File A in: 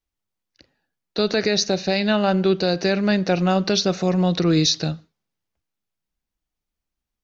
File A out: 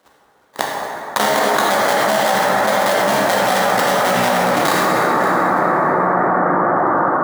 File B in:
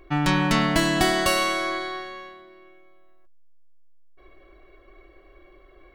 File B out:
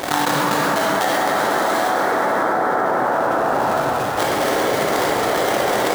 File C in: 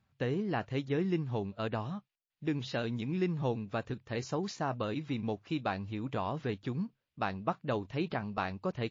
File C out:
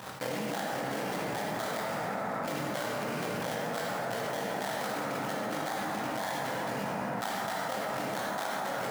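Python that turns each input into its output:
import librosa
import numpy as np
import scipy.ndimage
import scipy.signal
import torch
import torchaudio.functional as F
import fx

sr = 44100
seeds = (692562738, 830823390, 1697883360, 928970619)

p1 = fx.cycle_switch(x, sr, every=3, mode='muted')
p2 = 10.0 ** (-15.5 / 20.0) * np.tanh(p1 / 10.0 ** (-15.5 / 20.0))
p3 = p1 + (p2 * 10.0 ** (-9.0 / 20.0))
p4 = fx.dereverb_blind(p3, sr, rt60_s=1.4)
p5 = p4 + 0.79 * np.pad(p4, (int(1.3 * sr / 1000.0), 0))[:len(p4)]
p6 = fx.level_steps(p5, sr, step_db=19)
p7 = fx.small_body(p6, sr, hz=(1300.0, 2100.0), ring_ms=45, db=9)
p8 = fx.sample_hold(p7, sr, seeds[0], rate_hz=2600.0, jitter_pct=20)
p9 = scipy.signal.sosfilt(scipy.signal.butter(2, 350.0, 'highpass', fs=sr, output='sos'), p8)
p10 = p9 + fx.echo_single(p9, sr, ms=555, db=-23.5, dry=0)
p11 = fx.rev_plate(p10, sr, seeds[1], rt60_s=4.1, hf_ratio=0.35, predelay_ms=0, drr_db=-5.0)
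p12 = fx.env_flatten(p11, sr, amount_pct=100)
y = p12 * 10.0 ** (-1.0 / 20.0)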